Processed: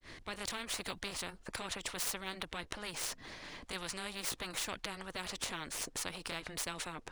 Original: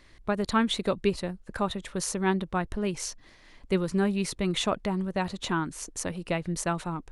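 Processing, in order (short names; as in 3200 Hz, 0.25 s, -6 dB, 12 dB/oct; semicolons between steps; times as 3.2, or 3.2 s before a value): median filter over 3 samples; grains 0.232 s, grains 9.6/s, spray 14 ms, pitch spread up and down by 0 st; spectral compressor 4:1; gain -4 dB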